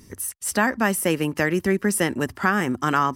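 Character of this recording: noise floor -51 dBFS; spectral tilt -4.5 dB/oct

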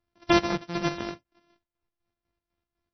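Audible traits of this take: a buzz of ramps at a fixed pitch in blocks of 128 samples; chopped level 4 Hz, depth 60%, duty 55%; MP3

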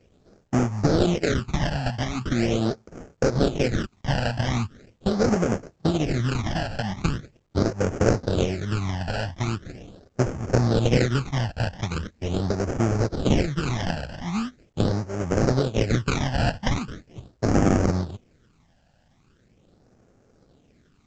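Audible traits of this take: aliases and images of a low sample rate 1000 Hz, jitter 20%; phasing stages 12, 0.41 Hz, lowest notch 370–3800 Hz; A-law

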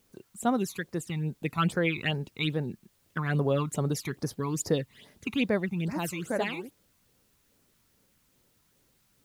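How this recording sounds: phasing stages 12, 2.4 Hz, lowest notch 510–3200 Hz; a quantiser's noise floor 12-bit, dither triangular

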